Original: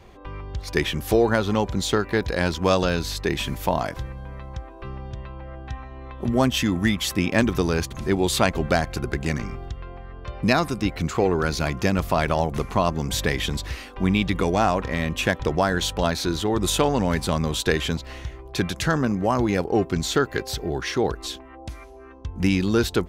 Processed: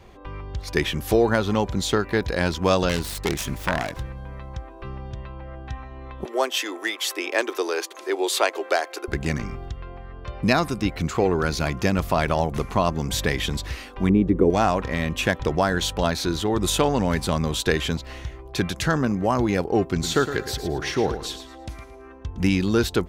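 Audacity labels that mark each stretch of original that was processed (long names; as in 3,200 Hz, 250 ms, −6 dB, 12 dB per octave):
2.890000	4.160000	phase distortion by the signal itself depth 0.6 ms
6.250000	9.080000	Butterworth high-pass 340 Hz 48 dB per octave
14.090000	14.500000	drawn EQ curve 150 Hz 0 dB, 380 Hz +10 dB, 820 Hz −8 dB, 2,000 Hz −14 dB, 4,100 Hz −26 dB, 9,600 Hz −18 dB
19.910000	22.500000	repeating echo 111 ms, feedback 29%, level −10.5 dB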